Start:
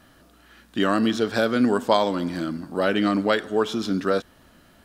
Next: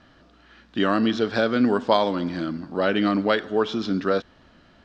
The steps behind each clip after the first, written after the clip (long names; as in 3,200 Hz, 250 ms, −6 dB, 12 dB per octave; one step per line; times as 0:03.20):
low-pass filter 5,300 Hz 24 dB per octave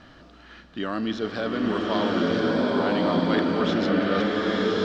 reversed playback
downward compressor 12 to 1, threshold −29 dBFS, peak gain reduction 16.5 dB
reversed playback
slow-attack reverb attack 1,210 ms, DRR −4.5 dB
level +5 dB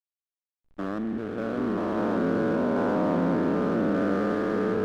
spectrum averaged block by block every 200 ms
low-pass filter 1,700 Hz 24 dB per octave
slack as between gear wheels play −34 dBFS